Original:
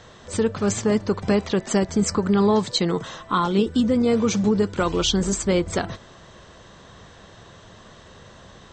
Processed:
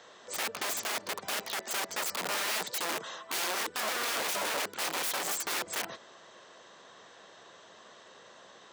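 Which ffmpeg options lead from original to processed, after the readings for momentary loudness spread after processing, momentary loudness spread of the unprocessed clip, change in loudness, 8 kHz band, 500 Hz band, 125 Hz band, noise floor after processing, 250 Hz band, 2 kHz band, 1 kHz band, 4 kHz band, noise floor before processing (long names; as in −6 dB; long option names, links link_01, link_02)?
5 LU, 6 LU, −10.5 dB, −4.0 dB, −17.5 dB, −31.0 dB, −55 dBFS, −28.0 dB, 0.0 dB, −7.5 dB, −5.0 dB, −47 dBFS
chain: -af "aeval=exprs='(mod(12.6*val(0)+1,2)-1)/12.6':channel_layout=same,highpass=400,volume=-5dB"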